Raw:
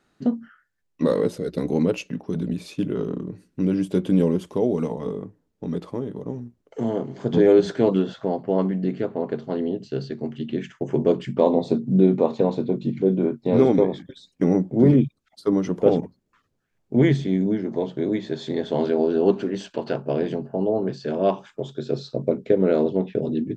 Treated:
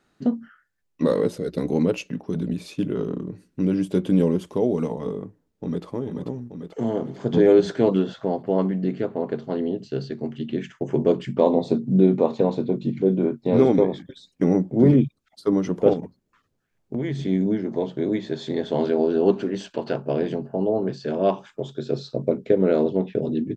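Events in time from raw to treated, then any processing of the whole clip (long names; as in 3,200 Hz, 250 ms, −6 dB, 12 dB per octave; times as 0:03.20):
0:05.22–0:05.85: delay throw 440 ms, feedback 65%, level −5 dB
0:15.93–0:17.26: downward compressor, threshold −23 dBFS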